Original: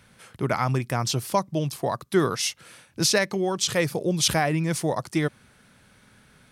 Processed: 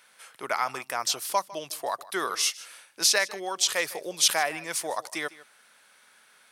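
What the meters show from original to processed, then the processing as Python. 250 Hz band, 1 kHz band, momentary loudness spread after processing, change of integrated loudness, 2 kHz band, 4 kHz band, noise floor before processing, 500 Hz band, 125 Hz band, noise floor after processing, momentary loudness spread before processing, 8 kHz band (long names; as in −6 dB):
−15.5 dB, −1.5 dB, 12 LU, −2.0 dB, 0.0 dB, +1.0 dB, −58 dBFS, −7.0 dB, −27.0 dB, −60 dBFS, 7 LU, +1.5 dB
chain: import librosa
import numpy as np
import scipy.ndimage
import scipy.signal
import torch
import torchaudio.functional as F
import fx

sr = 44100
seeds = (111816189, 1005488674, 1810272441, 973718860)

y = scipy.signal.sosfilt(scipy.signal.butter(2, 720.0, 'highpass', fs=sr, output='sos'), x)
y = fx.high_shelf(y, sr, hz=8000.0, db=4.0)
y = y + 10.0 ** (-19.0 / 20.0) * np.pad(y, (int(153 * sr / 1000.0), 0))[:len(y)]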